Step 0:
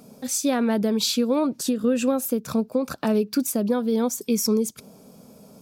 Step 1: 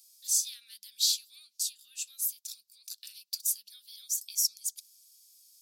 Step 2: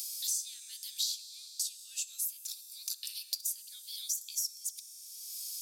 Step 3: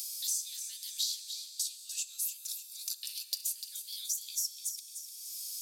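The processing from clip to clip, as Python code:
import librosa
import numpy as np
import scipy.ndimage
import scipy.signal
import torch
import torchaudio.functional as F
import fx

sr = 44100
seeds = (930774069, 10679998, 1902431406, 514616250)

y1 = scipy.signal.sosfilt(scipy.signal.cheby2(4, 70, 880.0, 'highpass', fs=sr, output='sos'), x)
y2 = fx.rev_fdn(y1, sr, rt60_s=2.1, lf_ratio=1.45, hf_ratio=0.7, size_ms=11.0, drr_db=11.5)
y2 = fx.band_squash(y2, sr, depth_pct=100)
y2 = y2 * 10.0 ** (-4.0 / 20.0)
y3 = fx.echo_feedback(y2, sr, ms=298, feedback_pct=48, wet_db=-9)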